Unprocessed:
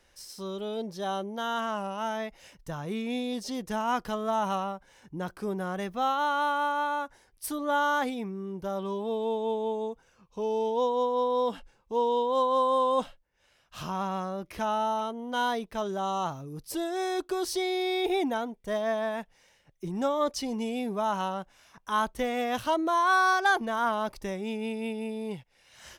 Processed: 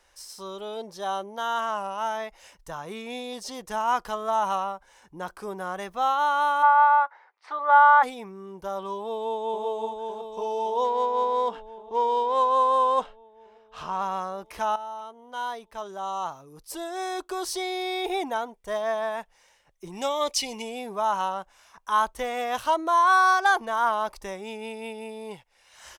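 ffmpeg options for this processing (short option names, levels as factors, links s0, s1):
-filter_complex "[0:a]asplit=3[s0][s1][s2];[s0]afade=t=out:st=6.62:d=0.02[s3];[s1]highpass=f=440:w=0.5412,highpass=f=440:w=1.3066,equalizer=f=880:t=q:w=4:g=7,equalizer=f=1300:t=q:w=4:g=9,equalizer=f=2000:t=q:w=4:g=7,equalizer=f=3100:t=q:w=4:g=-6,lowpass=f=3400:w=0.5412,lowpass=f=3400:w=1.3066,afade=t=in:st=6.62:d=0.02,afade=t=out:st=8.02:d=0.02[s4];[s2]afade=t=in:st=8.02:d=0.02[s5];[s3][s4][s5]amix=inputs=3:normalize=0,asplit=2[s6][s7];[s7]afade=t=in:st=8.97:d=0.01,afade=t=out:st=9.65:d=0.01,aecho=0:1:560|1120|1680|2240|2800|3360|3920|4480|5040|5600|6160|6720:0.595662|0.416964|0.291874|0.204312|0.143018|0.100113|0.0700791|0.0490553|0.0343387|0.0240371|0.016826|0.0117782[s8];[s6][s8]amix=inputs=2:normalize=0,asettb=1/sr,asplit=3[s9][s10][s11];[s9]atrim=end=10.844[s12];[s10]atrim=start=10.84:end=14.02,asetpts=PTS-STARTPTS,afade=t=in:d=0.004:c=qsin,afade=t=out:st=3.176:d=0.004:c=qsin,adynamicsmooth=sensitivity=7.5:basefreq=3400[s13];[s11]atrim=start=14.016[s14];[s12][s13]acrossfade=d=0.004:c1=hsin:c2=qsin[s15];[s15][s14]acrossfade=d=0.004:c1=qsin:c2=hsin,asettb=1/sr,asplit=3[s16][s17][s18];[s16]atrim=end=19.924[s19];[s17]atrim=start=19.92:end=20.62,asetpts=PTS-STARTPTS,afade=t=in:d=0.004:c=qsin,afade=t=out:st=0.696:d=0.004:c=qsin,highshelf=f=1900:t=q:w=3:g=6.5[s20];[s18]atrim=start=20.616[s21];[s19][s20]acrossfade=d=0.004:c1=hsin:c2=qsin[s22];[s22][s21]acrossfade=d=0.004:c1=qsin:c2=hsin,asplit=2[s23][s24];[s23]atrim=end=14.76,asetpts=PTS-STARTPTS,afade=t=out:st=14.756:d=0.004:c=hsin:silence=0.223872[s25];[s24]atrim=start=14.76,asetpts=PTS-STARTPTS,afade=t=in:d=2.73:silence=0.223872[s26];[s25][s26]concat=n=2:v=0:a=1,equalizer=f=125:t=o:w=1:g=-10,equalizer=f=250:t=o:w=1:g=-6,equalizer=f=1000:t=o:w=1:g=6,equalizer=f=8000:t=o:w=1:g=4"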